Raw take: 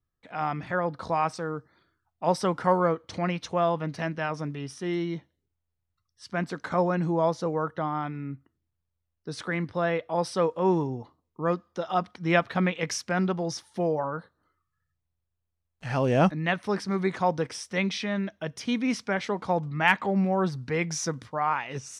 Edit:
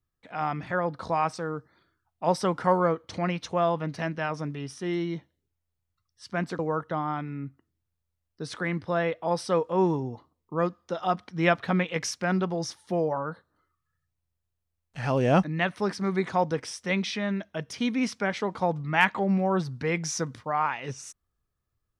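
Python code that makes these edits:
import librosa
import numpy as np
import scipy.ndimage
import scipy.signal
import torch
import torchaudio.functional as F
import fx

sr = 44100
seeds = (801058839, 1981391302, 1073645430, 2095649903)

y = fx.edit(x, sr, fx.cut(start_s=6.59, length_s=0.87), tone=tone)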